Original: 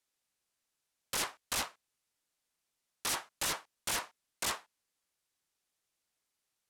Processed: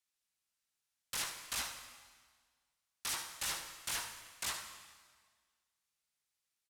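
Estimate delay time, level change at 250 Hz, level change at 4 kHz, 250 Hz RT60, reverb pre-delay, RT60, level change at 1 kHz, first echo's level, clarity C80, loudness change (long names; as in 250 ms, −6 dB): 75 ms, −9.0 dB, −2.5 dB, 1.6 s, 6 ms, 1.6 s, −6.0 dB, −10.0 dB, 8.5 dB, −3.5 dB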